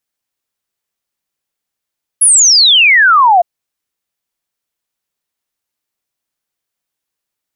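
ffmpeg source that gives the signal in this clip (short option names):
-f lavfi -i "aevalsrc='0.631*clip(min(t,1.21-t)/0.01,0,1)*sin(2*PI*11000*1.21/log(670/11000)*(exp(log(670/11000)*t/1.21)-1))':d=1.21:s=44100"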